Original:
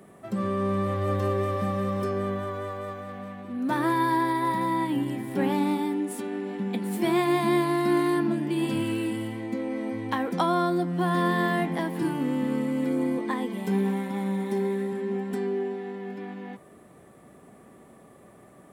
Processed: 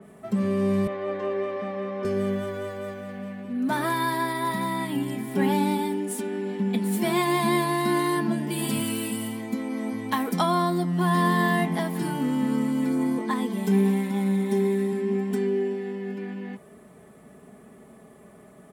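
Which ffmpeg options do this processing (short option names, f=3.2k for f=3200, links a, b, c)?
-filter_complex "[0:a]asettb=1/sr,asplit=3[a][b][c];[a]atrim=end=0.874[d];[b]atrim=start=0.87:end=2.05,asetpts=PTS-STARTPTS,afade=t=in:d=0.004:c=qsin,afade=t=out:st=1.176:d=0.004:c=qsin,highpass=360,lowpass=2.4k[e];[c]atrim=start=2.046[f];[d][e]acrossfade=d=0.004:c1=hsin:c2=qsin[g];[g][f]acrossfade=d=0.004:c1=qsin:c2=hsin,asettb=1/sr,asplit=3[h][i][j];[h]atrim=end=8.484[k];[i]atrim=start=8.48:end=10.39,asetpts=PTS-STARTPTS,afade=t=in:d=0.004:c=qsin,afade=t=out:st=1.906:d=0.004:c=qsin,highshelf=f=9k:g=12[l];[j]atrim=start=10.386[m];[k][l]acrossfade=d=0.004:c1=hsin:c2=qsin[n];[n][m]acrossfade=d=0.004:c1=qsin:c2=hsin,equalizer=f=100:w=1.5:g=5,aecho=1:1:4.7:0.62,adynamicequalizer=threshold=0.00631:dfrequency=3700:dqfactor=0.7:tfrequency=3700:tqfactor=0.7:attack=5:release=100:ratio=0.375:range=3:mode=boostabove:tftype=highshelf"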